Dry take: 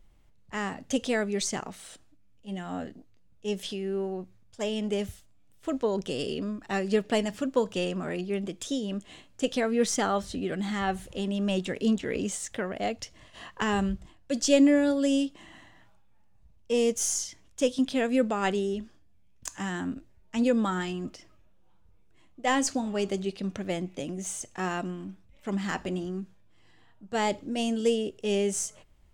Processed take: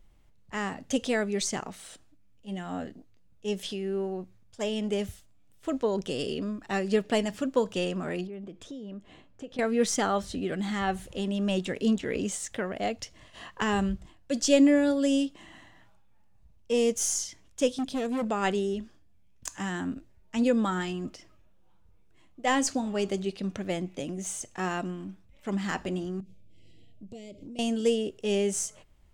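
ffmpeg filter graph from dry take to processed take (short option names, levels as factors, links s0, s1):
-filter_complex "[0:a]asettb=1/sr,asplit=3[s0][s1][s2];[s0]atrim=end=8.274[s3];[s1]atrim=start=8.27:end=9.59,asetpts=PTS-STARTPTS,afade=t=in:d=0.004:c=qsin,afade=t=out:st=1.316:d=0.004:c=qsin,lowpass=f=1300:p=1,acompressor=threshold=0.01:ratio=3:attack=3.2:release=140:knee=1:detection=peak[s4];[s2]atrim=start=9.586[s5];[s3][s4]acrossfade=d=0.004:c1=hsin:c2=qsin[s6];[s6][s5]acrossfade=d=0.004:c1=qsin:c2=hsin,asettb=1/sr,asplit=3[s7][s8][s9];[s7]atrim=end=17.774[s10];[s8]atrim=start=17.77:end=18.26,asetpts=PTS-STARTPTS,afade=t=in:d=0.004:c=qsin,afade=t=out:st=0.486:d=0.004:c=qsin,equalizer=f=1800:t=o:w=2.1:g=-7.5,asoftclip=type=hard:threshold=0.0473[s11];[s9]atrim=start=18.256[s12];[s10][s11]acrossfade=d=0.004:c1=hsin:c2=qsin[s13];[s13][s12]acrossfade=d=0.004:c1=qsin:c2=hsin,asettb=1/sr,asplit=3[s14][s15][s16];[s14]atrim=end=26.204[s17];[s15]atrim=start=26.2:end=27.59,asetpts=PTS-STARTPTS,afade=t=in:d=0.004:c=qsin,afade=t=out:st=1.386:d=0.004:c=qsin,asuperstop=centerf=1200:order=12:qfactor=0.82,lowshelf=f=370:g=7.5,acompressor=threshold=0.01:ratio=10:attack=3.2:release=140:knee=1:detection=peak[s18];[s16]atrim=start=27.586[s19];[s17][s18]acrossfade=d=0.004:c1=hsin:c2=qsin[s20];[s20][s19]acrossfade=d=0.004:c1=qsin:c2=hsin"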